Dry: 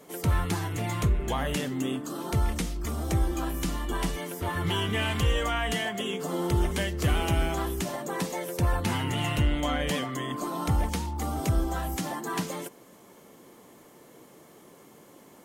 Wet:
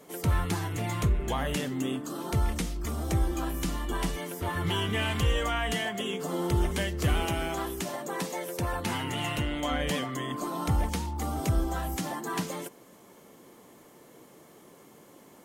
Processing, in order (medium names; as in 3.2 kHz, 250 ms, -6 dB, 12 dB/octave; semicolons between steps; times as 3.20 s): 7.25–9.71 s: bass shelf 120 Hz -10.5 dB; trim -1 dB